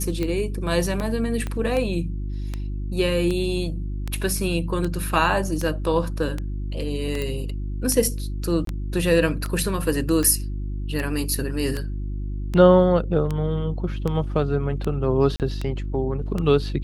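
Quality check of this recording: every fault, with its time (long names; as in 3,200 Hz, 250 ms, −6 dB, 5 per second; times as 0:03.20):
mains hum 50 Hz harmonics 7 −28 dBFS
scratch tick 78 rpm −14 dBFS
0:01.47: click −16 dBFS
0:07.22: click −15 dBFS
0:08.65–0:08.67: drop-out 23 ms
0:15.36–0:15.40: drop-out 38 ms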